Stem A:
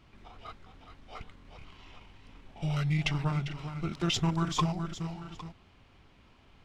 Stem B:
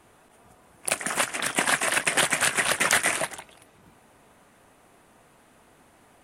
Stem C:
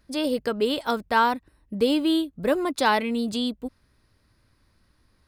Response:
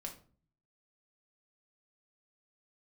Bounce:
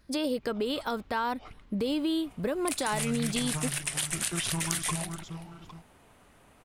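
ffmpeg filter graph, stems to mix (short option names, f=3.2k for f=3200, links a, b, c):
-filter_complex "[0:a]adelay=300,volume=-4.5dB[a];[1:a]acrossover=split=130|3000[b][c][d];[c]acompressor=threshold=-38dB:ratio=6[e];[b][e][d]amix=inputs=3:normalize=0,adelay=1800,volume=-3.5dB[f];[2:a]alimiter=limit=-20dB:level=0:latency=1:release=196,volume=1dB[g];[a][f][g]amix=inputs=3:normalize=0,acompressor=threshold=-25dB:ratio=6"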